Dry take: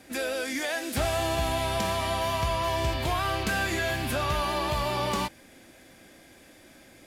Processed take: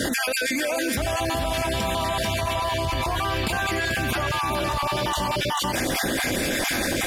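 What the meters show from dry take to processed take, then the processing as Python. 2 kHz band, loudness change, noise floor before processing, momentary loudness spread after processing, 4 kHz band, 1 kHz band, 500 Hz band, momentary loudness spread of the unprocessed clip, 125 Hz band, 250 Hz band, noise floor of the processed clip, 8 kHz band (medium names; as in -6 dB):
+6.5 dB, +4.0 dB, -54 dBFS, 1 LU, +6.0 dB, +3.5 dB, +3.5 dB, 3 LU, +3.0 dB, +6.5 dB, -26 dBFS, +8.0 dB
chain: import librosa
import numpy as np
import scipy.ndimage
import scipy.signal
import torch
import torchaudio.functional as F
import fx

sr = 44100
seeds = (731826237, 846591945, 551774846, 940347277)

y = fx.spec_dropout(x, sr, seeds[0], share_pct=34)
y = y + 10.0 ** (-5.5 / 20.0) * np.pad(y, (int(440 * sr / 1000.0), 0))[:len(y)]
y = fx.env_flatten(y, sr, amount_pct=100)
y = y * 10.0 ** (-1.0 / 20.0)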